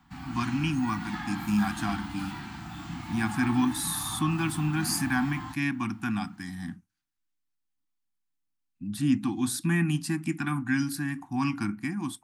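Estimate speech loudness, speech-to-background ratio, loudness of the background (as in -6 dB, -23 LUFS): -29.5 LUFS, 8.5 dB, -38.0 LUFS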